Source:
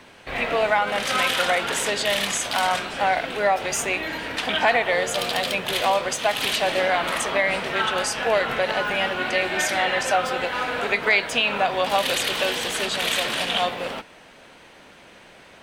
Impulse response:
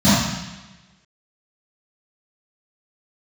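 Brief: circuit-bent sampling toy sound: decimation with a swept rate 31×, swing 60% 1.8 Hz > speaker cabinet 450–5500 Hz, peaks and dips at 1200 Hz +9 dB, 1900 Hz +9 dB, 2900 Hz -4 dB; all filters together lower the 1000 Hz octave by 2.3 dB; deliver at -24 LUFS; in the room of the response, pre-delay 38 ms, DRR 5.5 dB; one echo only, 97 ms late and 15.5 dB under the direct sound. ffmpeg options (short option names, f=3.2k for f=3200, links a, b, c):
-filter_complex "[0:a]equalizer=f=1k:t=o:g=-7.5,aecho=1:1:97:0.168,asplit=2[a][b];[1:a]atrim=start_sample=2205,adelay=38[c];[b][c]afir=irnorm=-1:irlink=0,volume=-29.5dB[d];[a][d]amix=inputs=2:normalize=0,acrusher=samples=31:mix=1:aa=0.000001:lfo=1:lforange=18.6:lforate=1.8,highpass=450,equalizer=f=1.2k:t=q:w=4:g=9,equalizer=f=1.9k:t=q:w=4:g=9,equalizer=f=2.9k:t=q:w=4:g=-4,lowpass=f=5.5k:w=0.5412,lowpass=f=5.5k:w=1.3066,volume=-0.5dB"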